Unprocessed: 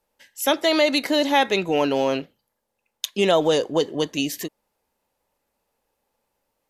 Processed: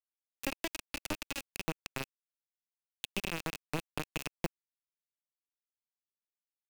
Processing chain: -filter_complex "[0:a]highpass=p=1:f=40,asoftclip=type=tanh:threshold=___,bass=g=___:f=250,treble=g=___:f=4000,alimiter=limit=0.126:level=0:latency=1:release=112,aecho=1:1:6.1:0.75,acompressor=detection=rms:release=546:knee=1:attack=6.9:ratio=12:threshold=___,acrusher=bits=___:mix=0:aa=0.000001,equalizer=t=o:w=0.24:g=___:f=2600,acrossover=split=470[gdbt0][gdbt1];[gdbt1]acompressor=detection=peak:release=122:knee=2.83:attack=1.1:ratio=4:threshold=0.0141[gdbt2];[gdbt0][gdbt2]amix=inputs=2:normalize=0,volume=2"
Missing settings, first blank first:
0.398, 4, -15, 0.0251, 4, 11